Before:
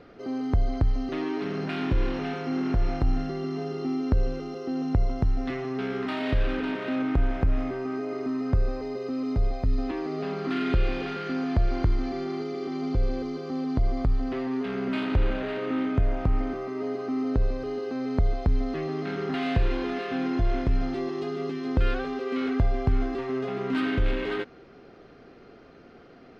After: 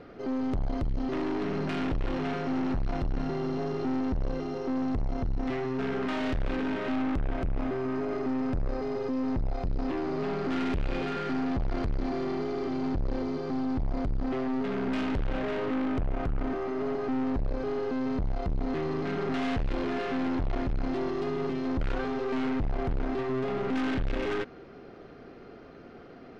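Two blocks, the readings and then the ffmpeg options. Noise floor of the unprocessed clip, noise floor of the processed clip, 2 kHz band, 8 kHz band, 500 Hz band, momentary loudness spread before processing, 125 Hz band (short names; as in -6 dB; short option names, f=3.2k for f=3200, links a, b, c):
-50 dBFS, -48 dBFS, -2.0 dB, n/a, -1.0 dB, 5 LU, -5.5 dB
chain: -af "highshelf=f=2.5k:g=-5,aeval=exprs='(tanh(35.5*val(0)+0.45)-tanh(0.45))/35.5':c=same,volume=4.5dB"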